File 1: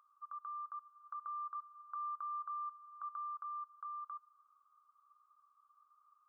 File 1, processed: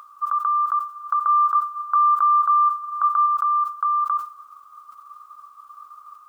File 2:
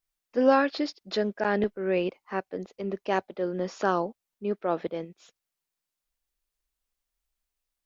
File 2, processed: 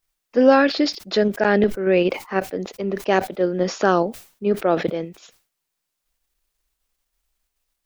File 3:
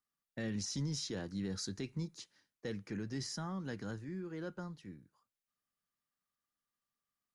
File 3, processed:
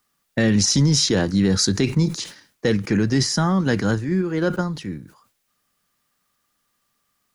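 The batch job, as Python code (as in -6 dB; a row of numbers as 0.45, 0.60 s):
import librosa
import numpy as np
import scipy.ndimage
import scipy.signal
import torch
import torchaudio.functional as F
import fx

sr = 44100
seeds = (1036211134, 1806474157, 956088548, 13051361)

p1 = fx.level_steps(x, sr, step_db=14)
p2 = x + (p1 * librosa.db_to_amplitude(-2.5))
p3 = fx.dynamic_eq(p2, sr, hz=990.0, q=3.0, threshold_db=-44.0, ratio=4.0, max_db=-6)
p4 = fx.sustainer(p3, sr, db_per_s=140.0)
y = p4 * 10.0 ** (-22 / 20.0) / np.sqrt(np.mean(np.square(p4)))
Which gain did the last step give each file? +22.5, +5.5, +17.5 dB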